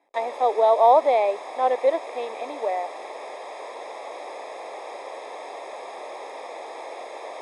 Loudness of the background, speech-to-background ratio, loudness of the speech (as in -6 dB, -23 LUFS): -37.0 LUFS, 15.0 dB, -22.0 LUFS